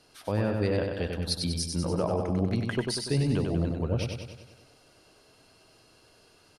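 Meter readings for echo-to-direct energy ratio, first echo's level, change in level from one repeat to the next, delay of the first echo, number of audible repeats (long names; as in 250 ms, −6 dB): −3.0 dB, −4.5 dB, −5.0 dB, 96 ms, 7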